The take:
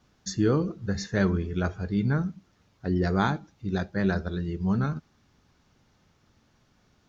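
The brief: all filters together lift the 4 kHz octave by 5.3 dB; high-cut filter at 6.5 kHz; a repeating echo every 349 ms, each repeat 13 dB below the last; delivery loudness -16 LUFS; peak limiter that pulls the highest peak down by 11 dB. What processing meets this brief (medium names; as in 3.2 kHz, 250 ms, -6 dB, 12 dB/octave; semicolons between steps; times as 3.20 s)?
low-pass 6.5 kHz; peaking EQ 4 kHz +7 dB; peak limiter -20.5 dBFS; feedback delay 349 ms, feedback 22%, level -13 dB; trim +15.5 dB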